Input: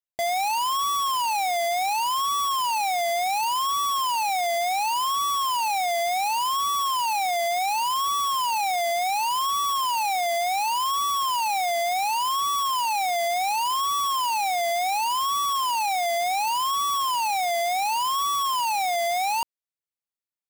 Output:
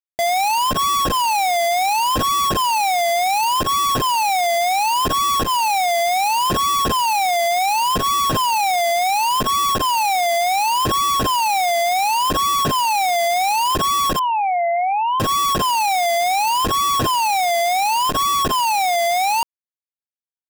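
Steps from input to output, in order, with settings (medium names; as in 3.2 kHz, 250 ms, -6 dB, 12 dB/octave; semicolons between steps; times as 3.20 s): median filter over 41 samples; 14.19–15.20 s: loudest bins only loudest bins 4; transformer saturation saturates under 51 Hz; trim +6.5 dB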